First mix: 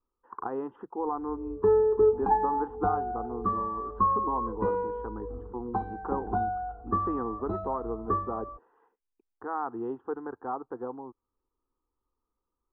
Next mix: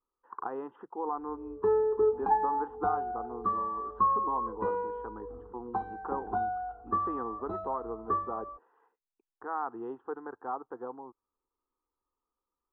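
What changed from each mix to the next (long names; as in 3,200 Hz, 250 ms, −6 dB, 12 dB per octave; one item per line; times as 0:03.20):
master: add low-shelf EQ 330 Hz −11 dB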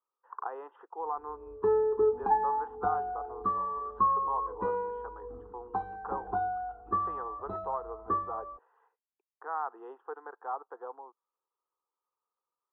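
speech: add high-pass filter 470 Hz 24 dB per octave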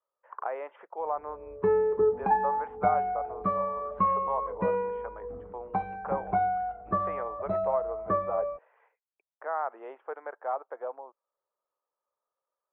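master: remove phaser with its sweep stopped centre 600 Hz, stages 6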